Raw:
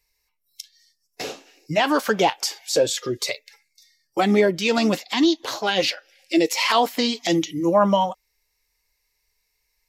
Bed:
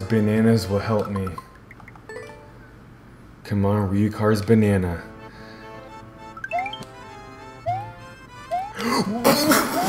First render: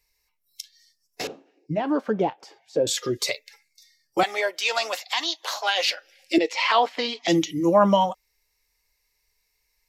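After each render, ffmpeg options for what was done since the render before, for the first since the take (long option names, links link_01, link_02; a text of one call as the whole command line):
ffmpeg -i in.wav -filter_complex "[0:a]asettb=1/sr,asplit=3[link_01][link_02][link_03];[link_01]atrim=end=1.274[link_04];[link_02]atrim=start=1.27:end=2.87,asetpts=PTS-STARTPTS,afade=type=in:duration=0.004:curve=qsin,afade=type=out:start_time=1.596:duration=0.004:curve=qsin,bandpass=frequency=200:width_type=q:width=0.54[link_05];[link_03]atrim=start=2.866[link_06];[link_04][link_05]acrossfade=duration=0.004:curve1=hsin:curve2=qsin[link_07];[link_07][link_06]acrossfade=duration=0.004:curve1=qsin:curve2=hsin,asettb=1/sr,asplit=3[link_08][link_09][link_10];[link_08]atrim=end=4.234[link_11];[link_09]atrim=start=4.23:end=5.88,asetpts=PTS-STARTPTS,afade=type=in:duration=0.004:curve=qsin,afade=type=out:start_time=1.646:duration=0.004:curve=qsin,highpass=frequency=620:width=0.5412,highpass=frequency=620:width=1.3066[link_12];[link_10]atrim=start=5.876[link_13];[link_11][link_12]acrossfade=duration=0.004:curve1=hsin:curve2=qsin[link_14];[link_14][link_13]acrossfade=duration=0.004:curve1=qsin:curve2=hsin,asettb=1/sr,asplit=3[link_15][link_16][link_17];[link_15]atrim=end=6.384[link_18];[link_16]atrim=start=6.38:end=7.28,asetpts=PTS-STARTPTS,afade=type=in:duration=0.004:curve=qsin,afade=type=out:start_time=0.896:duration=0.004:curve=qsin,highpass=450,lowpass=3500[link_19];[link_17]atrim=start=7.276[link_20];[link_18][link_19]acrossfade=duration=0.004:curve1=hsin:curve2=qsin[link_21];[link_21][link_20]acrossfade=duration=0.004:curve1=qsin:curve2=hsin" out.wav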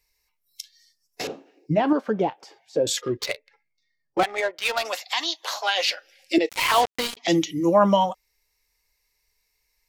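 ffmpeg -i in.wav -filter_complex "[0:a]asettb=1/sr,asplit=3[link_01][link_02][link_03];[link_01]atrim=end=1.274[link_04];[link_02]atrim=start=1.27:end=1.93,asetpts=PTS-STARTPTS,afade=type=in:duration=0.004:curve=qsin,afade=type=out:start_time=0.656:duration=0.004:curve=qsin,acontrast=24[link_05];[link_03]atrim=start=1.926[link_06];[link_04][link_05]acrossfade=duration=0.004:curve1=hsin:curve2=qsin[link_07];[link_07][link_06]acrossfade=duration=0.004:curve1=qsin:curve2=hsin,asplit=3[link_08][link_09][link_10];[link_08]afade=type=out:start_time=3:duration=0.02[link_11];[link_09]adynamicsmooth=sensitivity=2.5:basefreq=1300,afade=type=in:start_time=3:duration=0.02,afade=type=out:start_time=4.84:duration=0.02[link_12];[link_10]afade=type=in:start_time=4.84:duration=0.02[link_13];[link_11][link_12][link_13]amix=inputs=3:normalize=0,asettb=1/sr,asplit=3[link_14][link_15][link_16];[link_14]atrim=end=6.494[link_17];[link_15]atrim=start=6.49:end=7.17,asetpts=PTS-STARTPTS,afade=type=in:duration=0.004:curve=qsin,afade=type=out:start_time=0.676:duration=0.004:curve=qsin,acrusher=bits=3:mix=0:aa=0.5[link_18];[link_16]atrim=start=7.166[link_19];[link_17][link_18]acrossfade=duration=0.004:curve1=hsin:curve2=qsin[link_20];[link_20][link_19]acrossfade=duration=0.004:curve1=qsin:curve2=hsin" out.wav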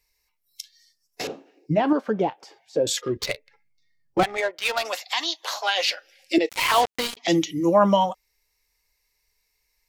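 ffmpeg -i in.wav -filter_complex "[0:a]asettb=1/sr,asplit=3[link_01][link_02][link_03];[link_01]atrim=end=3.164[link_04];[link_02]atrim=start=3.16:end=4.37,asetpts=PTS-STARTPTS,afade=type=in:duration=0.004:curve=qsin,afade=type=out:start_time=1.206:duration=0.004:curve=qsin,bass=frequency=250:gain=11,treble=frequency=4000:gain=1[link_05];[link_03]atrim=start=4.366[link_06];[link_04][link_05]acrossfade=duration=0.004:curve1=hsin:curve2=qsin[link_07];[link_07][link_06]acrossfade=duration=0.004:curve1=qsin:curve2=hsin" out.wav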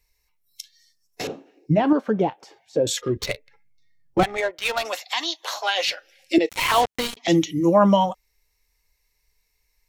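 ffmpeg -i in.wav -af "lowshelf=frequency=210:gain=8,bandreject=frequency=4800:width=15" out.wav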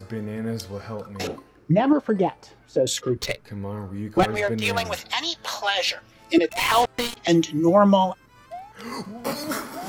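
ffmpeg -i in.wav -i bed.wav -filter_complex "[1:a]volume=-11.5dB[link_01];[0:a][link_01]amix=inputs=2:normalize=0" out.wav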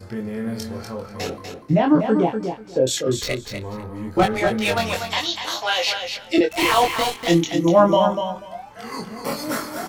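ffmpeg -i in.wav -filter_complex "[0:a]asplit=2[link_01][link_02];[link_02]adelay=23,volume=-3dB[link_03];[link_01][link_03]amix=inputs=2:normalize=0,aecho=1:1:244|488|732:0.447|0.0804|0.0145" out.wav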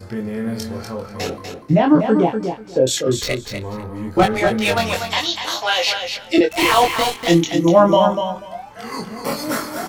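ffmpeg -i in.wav -af "volume=3dB,alimiter=limit=-1dB:level=0:latency=1" out.wav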